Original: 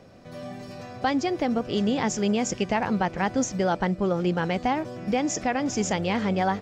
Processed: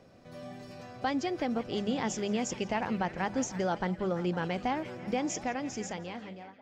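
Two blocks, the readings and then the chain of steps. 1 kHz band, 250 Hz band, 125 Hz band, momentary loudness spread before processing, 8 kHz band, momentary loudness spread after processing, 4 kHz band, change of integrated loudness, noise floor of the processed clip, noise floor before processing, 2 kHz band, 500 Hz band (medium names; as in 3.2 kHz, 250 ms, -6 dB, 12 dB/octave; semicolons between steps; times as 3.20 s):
-7.5 dB, -7.5 dB, -8.0 dB, 12 LU, -7.0 dB, 14 LU, -7.0 dB, -7.0 dB, -54 dBFS, -42 dBFS, -7.0 dB, -7.0 dB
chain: fade out at the end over 1.32 s; hum notches 50/100/150/200 Hz; repeats whose band climbs or falls 169 ms, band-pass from 3.1 kHz, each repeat -0.7 oct, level -8.5 dB; trim -6.5 dB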